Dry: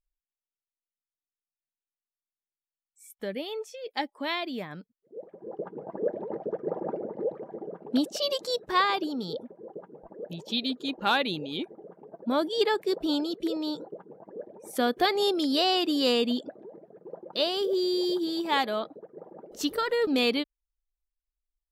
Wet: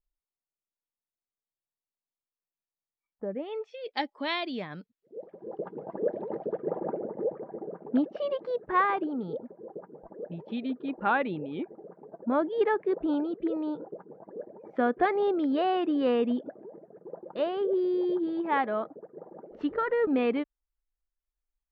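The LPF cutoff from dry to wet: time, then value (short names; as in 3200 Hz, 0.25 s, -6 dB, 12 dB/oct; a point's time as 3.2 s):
LPF 24 dB/oct
3.28 s 1100 Hz
3.52 s 2600 Hz
3.97 s 5000 Hz
6.43 s 5000 Hz
7 s 2000 Hz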